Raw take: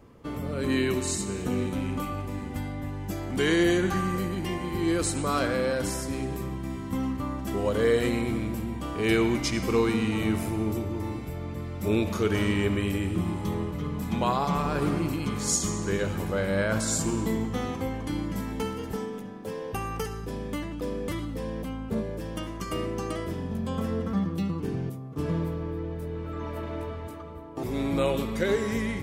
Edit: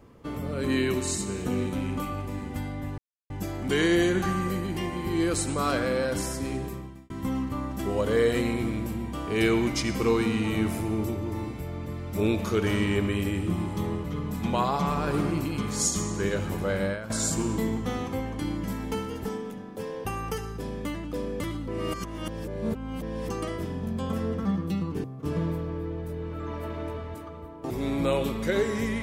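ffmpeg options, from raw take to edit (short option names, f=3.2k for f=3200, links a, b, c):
-filter_complex "[0:a]asplit=7[a][b][c][d][e][f][g];[a]atrim=end=2.98,asetpts=PTS-STARTPTS,afade=t=out:st=2.976:d=0.004:c=hsin,apad=pad_dur=0.32[h];[b]atrim=start=2.98:end=6.78,asetpts=PTS-STARTPTS,afade=t=in:d=0.004:c=hsin,afade=t=out:st=3.28:d=0.52[i];[c]atrim=start=6.78:end=16.78,asetpts=PTS-STARTPTS,afade=t=in:d=0.004:c=hsin,afade=t=out:st=9.74:d=0.26:c=qua:silence=0.199526[j];[d]atrim=start=16.78:end=21.362,asetpts=PTS-STARTPTS,afade=t=in:d=0.004:c=hsin:silence=0.199526[k];[e]atrim=start=21.358:end=22.972,asetpts=PTS-STARTPTS,areverse[l];[f]atrim=start=22.968:end=24.722[m];[g]atrim=start=24.968[n];[h][i][j][k]concat=n=4:v=0:a=1[o];[o][l]acrossfade=d=0.004:c1=hsin:c2=hsin[p];[p][m]acrossfade=d=0.004:c1=hsin:c2=hsin[q];[q][n]acrossfade=d=0.004:c1=hsin:c2=hsin"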